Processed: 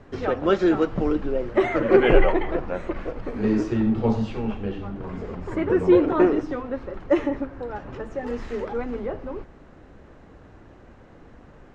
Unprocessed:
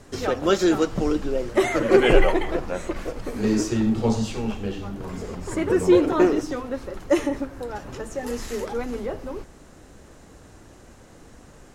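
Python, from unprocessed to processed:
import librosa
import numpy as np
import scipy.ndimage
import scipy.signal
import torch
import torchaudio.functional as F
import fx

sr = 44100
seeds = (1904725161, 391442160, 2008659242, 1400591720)

y = scipy.signal.sosfilt(scipy.signal.butter(2, 2400.0, 'lowpass', fs=sr, output='sos'), x)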